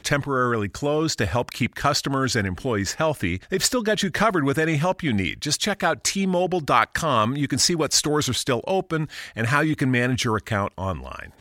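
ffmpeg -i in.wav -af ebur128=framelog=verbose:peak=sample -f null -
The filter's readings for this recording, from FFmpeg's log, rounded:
Integrated loudness:
  I:         -22.5 LUFS
  Threshold: -32.6 LUFS
Loudness range:
  LRA:         2.2 LU
  Threshold: -42.3 LUFS
  LRA low:   -23.5 LUFS
  LRA high:  -21.3 LUFS
Sample peak:
  Peak:       -2.8 dBFS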